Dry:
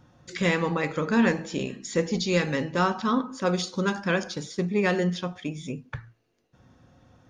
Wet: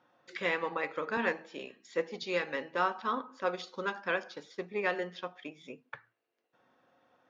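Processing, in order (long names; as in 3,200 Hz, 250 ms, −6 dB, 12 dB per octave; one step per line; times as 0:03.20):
band-pass filter 470–3,200 Hz
transient designer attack +1 dB, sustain −3 dB
0:01.17–0:02.23: multiband upward and downward expander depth 40%
level −4.5 dB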